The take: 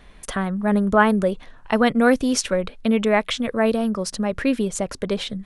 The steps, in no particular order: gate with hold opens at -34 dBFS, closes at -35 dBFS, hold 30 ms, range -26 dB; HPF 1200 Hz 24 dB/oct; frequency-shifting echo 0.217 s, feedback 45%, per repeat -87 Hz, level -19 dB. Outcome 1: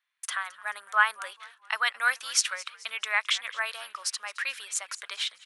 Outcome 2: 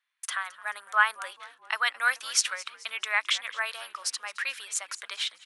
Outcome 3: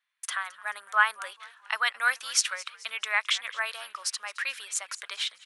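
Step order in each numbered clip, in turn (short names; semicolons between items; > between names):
gate with hold > frequency-shifting echo > HPF; gate with hold > HPF > frequency-shifting echo; frequency-shifting echo > gate with hold > HPF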